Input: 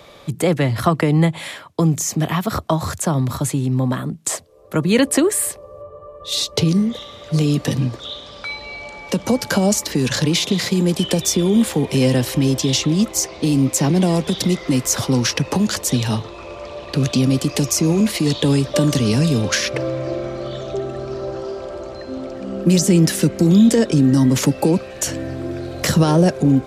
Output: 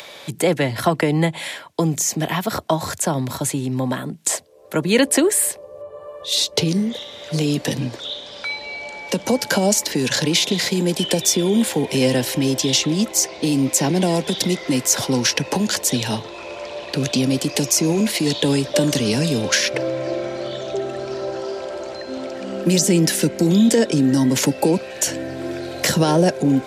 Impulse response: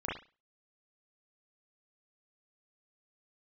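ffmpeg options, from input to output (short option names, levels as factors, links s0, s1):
-filter_complex "[0:a]highpass=f=320:p=1,bandreject=f=1200:w=5.2,acrossover=split=900[s0][s1];[s1]acompressor=mode=upward:threshold=0.02:ratio=2.5[s2];[s0][s2]amix=inputs=2:normalize=0,volume=1.26"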